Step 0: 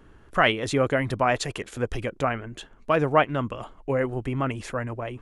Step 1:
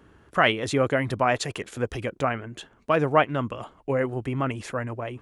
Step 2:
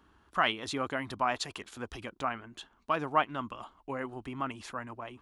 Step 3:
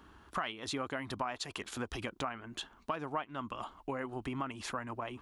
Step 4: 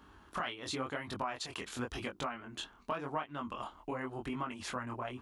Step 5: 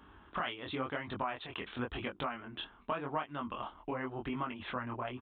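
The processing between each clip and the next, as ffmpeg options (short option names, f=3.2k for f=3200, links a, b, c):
-af "highpass=66"
-af "equalizer=f=125:t=o:w=1:g=-11,equalizer=f=500:t=o:w=1:g=-10,equalizer=f=1k:t=o:w=1:g=5,equalizer=f=2k:t=o:w=1:g=-5,equalizer=f=4k:t=o:w=1:g=4,equalizer=f=8k:t=o:w=1:g=-3,volume=-5.5dB"
-af "acompressor=threshold=-41dB:ratio=5,volume=6dB"
-af "flanger=delay=20:depth=5.1:speed=0.91,volume=2.5dB"
-af "aresample=8000,aresample=44100,volume=1dB"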